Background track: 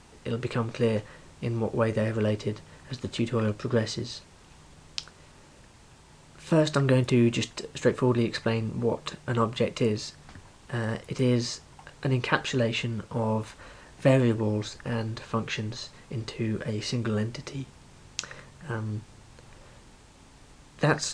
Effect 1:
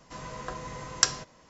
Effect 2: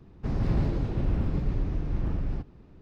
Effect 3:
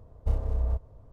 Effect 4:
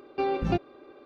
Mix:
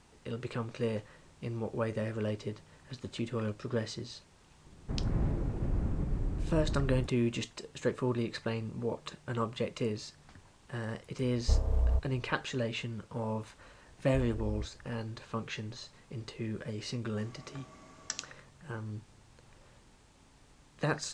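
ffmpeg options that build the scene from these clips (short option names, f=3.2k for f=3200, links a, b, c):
-filter_complex "[3:a]asplit=2[a][b];[0:a]volume=-8dB[c];[2:a]lowpass=2k[d];[1:a]afreqshift=130[e];[d]atrim=end=2.81,asetpts=PTS-STARTPTS,volume=-5.5dB,afade=t=in:d=0.004:c=hsin,afade=t=out:st=2.806:d=0.004:c=hsin,adelay=205065S[f];[a]atrim=end=1.12,asetpts=PTS-STARTPTS,volume=-0.5dB,afade=t=in:d=0.004:c=hsin,afade=t=out:st=1.116:d=0.004:c=hsin,adelay=494802S[g];[b]atrim=end=1.12,asetpts=PTS-STARTPTS,volume=-11.5dB,afade=t=in:d=0.004:c=hsin,afade=t=out:st=1.116:d=0.004:c=hsin,adelay=13880[h];[e]atrim=end=1.49,asetpts=PTS-STARTPTS,volume=-16dB,afade=t=in:d=0.004:c=hsin,afade=t=out:st=1.486:d=0.004:c=hsin,adelay=17070[i];[c][f][g][h][i]amix=inputs=5:normalize=0"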